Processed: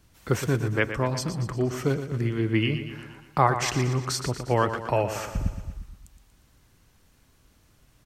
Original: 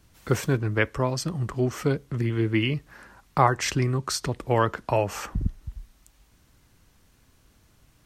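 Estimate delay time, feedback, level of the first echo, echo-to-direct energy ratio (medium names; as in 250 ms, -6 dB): 118 ms, 56%, -10.0 dB, -8.5 dB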